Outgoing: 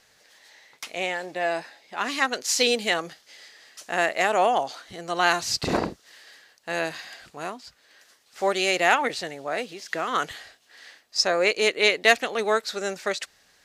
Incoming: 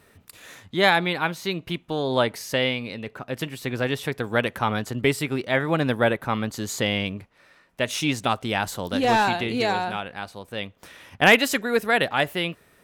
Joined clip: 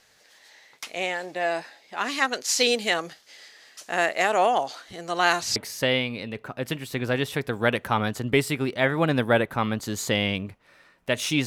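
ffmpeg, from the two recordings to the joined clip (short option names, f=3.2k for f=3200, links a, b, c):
-filter_complex "[0:a]apad=whole_dur=11.46,atrim=end=11.46,atrim=end=5.562[a];[1:a]atrim=start=2.268:end=8.17[b];[a][b]acrossfade=d=0.004:c1=hsin:c2=hsin"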